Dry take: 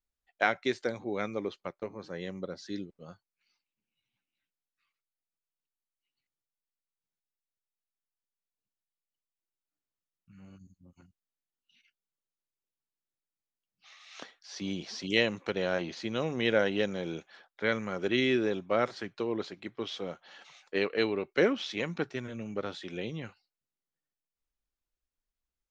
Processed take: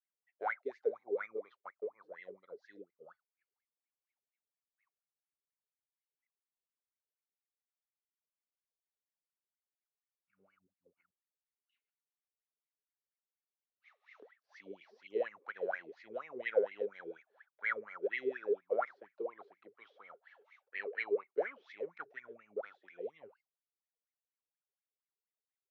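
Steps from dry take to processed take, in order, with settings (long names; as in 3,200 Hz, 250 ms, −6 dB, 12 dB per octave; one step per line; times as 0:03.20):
LFO wah 4.2 Hz 400–2,200 Hz, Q 18
level +6 dB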